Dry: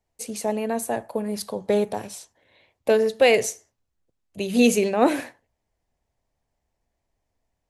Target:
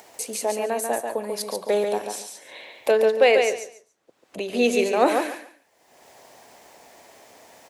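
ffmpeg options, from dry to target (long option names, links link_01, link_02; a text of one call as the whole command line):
ffmpeg -i in.wav -filter_complex "[0:a]highpass=380,acompressor=mode=upward:threshold=-28dB:ratio=2.5,asettb=1/sr,asplit=3[link_01][link_02][link_03];[link_01]atrim=end=2.914[link_04];[link_02]atrim=start=2.91:end=4.79,asetpts=PTS-STARTPTS,afade=type=in:duration=0.004:curve=qsin,afade=type=out:start_time=1.876:duration=0.004:curve=qsin,lowpass=frequency=2900:poles=1[link_05];[link_03]atrim=start=4.786[link_06];[link_04][link_05]acrossfade=duration=0.004:curve1=hsin:curve2=qsin[link_07];[link_07][link_06]acrossfade=duration=0.004:curve1=qsin:curve2=hsin,asplit=2[link_08][link_09];[link_09]aecho=0:1:141|282|423:0.562|0.112|0.0225[link_10];[link_08][link_10]amix=inputs=2:normalize=0,volume=1.5dB" out.wav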